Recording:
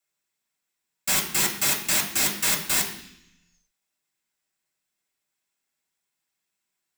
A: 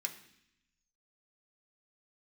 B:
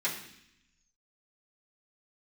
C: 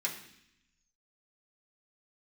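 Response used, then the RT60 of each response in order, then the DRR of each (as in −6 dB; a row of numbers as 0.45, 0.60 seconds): C; 0.70, 0.70, 0.70 seconds; 2.5, −9.5, −4.0 decibels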